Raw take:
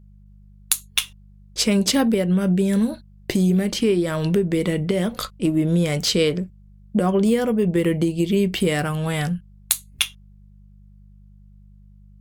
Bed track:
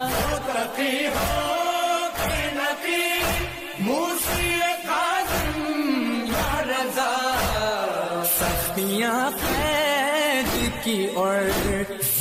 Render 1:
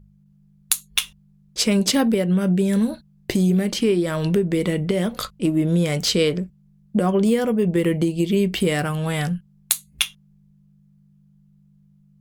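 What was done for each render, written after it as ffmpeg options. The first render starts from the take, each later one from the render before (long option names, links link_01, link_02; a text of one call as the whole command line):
ffmpeg -i in.wav -af "bandreject=frequency=50:width_type=h:width=4,bandreject=frequency=100:width_type=h:width=4" out.wav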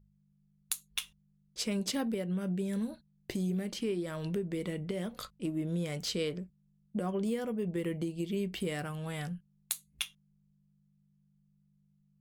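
ffmpeg -i in.wav -af "volume=-14.5dB" out.wav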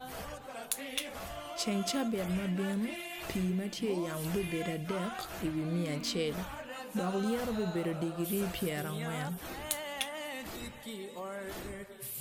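ffmpeg -i in.wav -i bed.wav -filter_complex "[1:a]volume=-19dB[link_01];[0:a][link_01]amix=inputs=2:normalize=0" out.wav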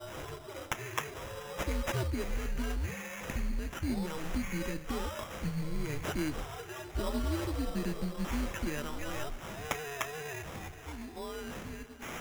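ffmpeg -i in.wav -af "afreqshift=-150,acrusher=samples=10:mix=1:aa=0.000001" out.wav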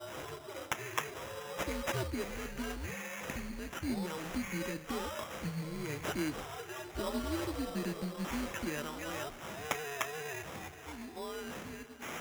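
ffmpeg -i in.wav -af "highpass=frequency=170:poles=1" out.wav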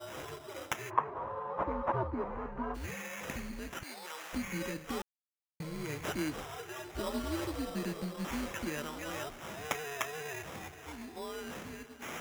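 ffmpeg -i in.wav -filter_complex "[0:a]asplit=3[link_01][link_02][link_03];[link_01]afade=type=out:start_time=0.89:duration=0.02[link_04];[link_02]lowpass=frequency=1000:width_type=q:width=3.8,afade=type=in:start_time=0.89:duration=0.02,afade=type=out:start_time=2.74:duration=0.02[link_05];[link_03]afade=type=in:start_time=2.74:duration=0.02[link_06];[link_04][link_05][link_06]amix=inputs=3:normalize=0,asettb=1/sr,asplit=3[link_07][link_08][link_09];[link_07]atrim=end=3.834[link_10];[link_08]atrim=start=3.83:end=4.33,asetpts=PTS-STARTPTS,afade=type=in:duration=0.004:curve=qsin,afade=type=out:start_time=0.496:duration=0.004:curve=qsin,highpass=780[link_11];[link_09]atrim=start=4.326[link_12];[link_10][link_11]acrossfade=duration=0.004:curve1=hsin:curve2=qsin[link_13];[link_13][link_12]acrossfade=duration=0.004:curve1=qsin:curve2=hsin,asplit=3[link_14][link_15][link_16];[link_14]atrim=end=5.02,asetpts=PTS-STARTPTS,afade=type=out:start_time=5.016:duration=0.004:curve=hsin[link_17];[link_15]atrim=start=5.02:end=5.6,asetpts=PTS-STARTPTS,volume=0[link_18];[link_16]atrim=start=5.6,asetpts=PTS-STARTPTS,afade=type=in:duration=0.004:curve=hsin[link_19];[link_17][link_18][link_19]concat=n=3:v=0:a=1" out.wav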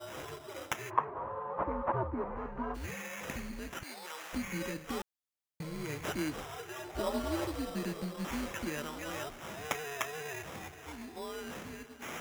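ffmpeg -i in.wav -filter_complex "[0:a]asettb=1/sr,asplit=3[link_01][link_02][link_03];[link_01]atrim=end=1.054[link_04];[link_02]atrim=start=1.05:end=2.37,asetpts=PTS-STARTPTS,afade=type=in:duration=0.004:curve=qsin,afade=type=out:start_time=1.316:duration=0.004:curve=qsin,lowpass=2500[link_05];[link_03]atrim=start=2.366[link_06];[link_04][link_05]acrossfade=duration=0.004:curve1=hsin:curve2=qsin[link_07];[link_07][link_06]acrossfade=duration=0.004:curve1=qsin:curve2=hsin,asettb=1/sr,asplit=3[link_08][link_09][link_10];[link_08]atrim=end=6.824[link_11];[link_09]atrim=start=6.82:end=7.47,asetpts=PTS-STARTPTS,afade=type=in:duration=0.004:curve=qsin,afade=type=out:start_time=0.646:duration=0.004:curve=qsin,equalizer=frequency=700:width_type=o:width=1:gain=6[link_12];[link_10]atrim=start=7.466[link_13];[link_11][link_12]acrossfade=duration=0.004:curve1=hsin:curve2=qsin[link_14];[link_14][link_13]acrossfade=duration=0.004:curve1=qsin:curve2=hsin" out.wav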